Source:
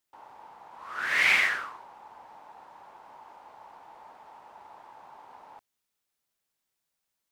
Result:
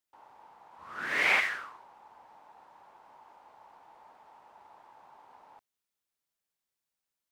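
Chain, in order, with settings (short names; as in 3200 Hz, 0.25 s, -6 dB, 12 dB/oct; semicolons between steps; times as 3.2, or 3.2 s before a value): 0.78–1.39 bell 88 Hz -> 710 Hz +12 dB 2.4 oct; gain -6 dB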